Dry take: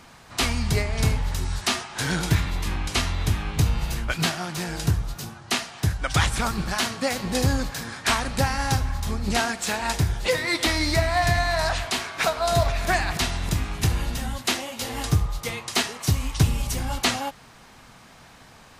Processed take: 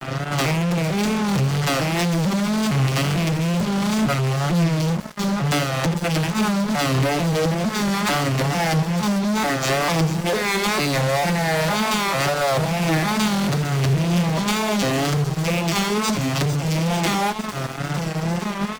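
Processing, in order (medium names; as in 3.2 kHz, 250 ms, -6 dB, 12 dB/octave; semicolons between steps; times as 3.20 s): vocoder on a broken chord minor triad, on C#3, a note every 449 ms; hum notches 50/100/150 Hz; comb 5.7 ms, depth 56%; compression 4:1, threshold -39 dBFS, peak gain reduction 23 dB; speakerphone echo 80 ms, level -14 dB; fuzz box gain 49 dB, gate -55 dBFS; flange 0.48 Hz, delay 8.5 ms, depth 8.7 ms, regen +84%; wow and flutter 85 cents; on a send: feedback echo behind a high-pass 453 ms, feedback 75%, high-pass 4.8 kHz, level -9 dB; on the sum: crossover distortion -40 dBFS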